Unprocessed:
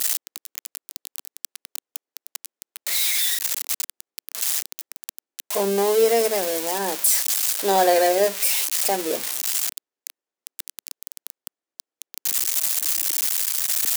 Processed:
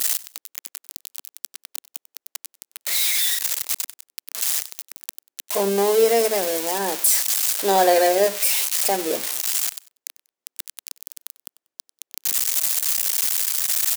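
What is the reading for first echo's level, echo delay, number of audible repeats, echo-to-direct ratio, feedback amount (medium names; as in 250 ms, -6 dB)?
-19.5 dB, 95 ms, 2, -19.0 dB, 26%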